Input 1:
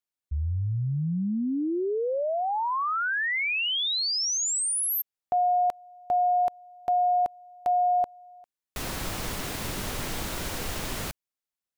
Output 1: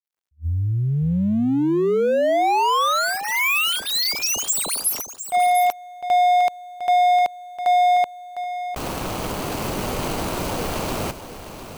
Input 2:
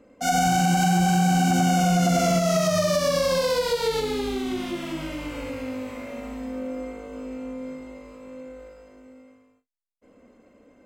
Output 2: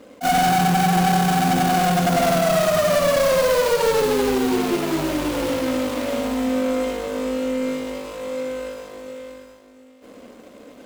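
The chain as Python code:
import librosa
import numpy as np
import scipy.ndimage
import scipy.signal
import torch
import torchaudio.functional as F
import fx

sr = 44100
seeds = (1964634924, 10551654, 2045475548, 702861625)

p1 = scipy.ndimage.median_filter(x, 25, mode='constant')
p2 = fx.tilt_eq(p1, sr, slope=2.5)
p3 = fx.rider(p2, sr, range_db=4, speed_s=2.0)
p4 = p2 + (p3 * librosa.db_to_amplitude(-0.5))
p5 = 10.0 ** (-22.0 / 20.0) * np.tanh(p4 / 10.0 ** (-22.0 / 20.0))
p6 = p5 + 10.0 ** (-11.0 / 20.0) * np.pad(p5, (int(705 * sr / 1000.0), 0))[:len(p5)]
p7 = fx.attack_slew(p6, sr, db_per_s=410.0)
y = p7 * librosa.db_to_amplitude(7.5)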